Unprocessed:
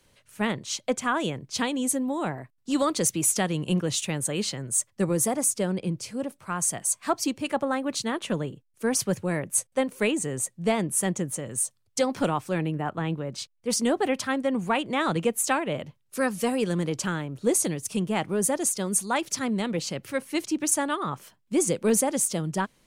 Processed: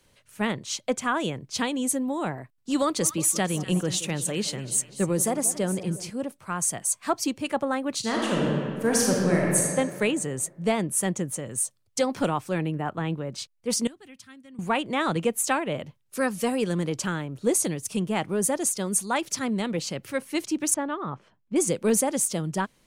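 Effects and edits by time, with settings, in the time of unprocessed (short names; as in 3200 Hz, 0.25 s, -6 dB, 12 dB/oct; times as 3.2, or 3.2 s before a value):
2.82–6.1 split-band echo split 1100 Hz, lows 0.178 s, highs 0.245 s, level -14 dB
7.99–9.66 reverb throw, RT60 2.1 s, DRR -3.5 dB
13.87–14.59 passive tone stack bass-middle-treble 6-0-2
20.74–21.56 tape spacing loss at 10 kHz 31 dB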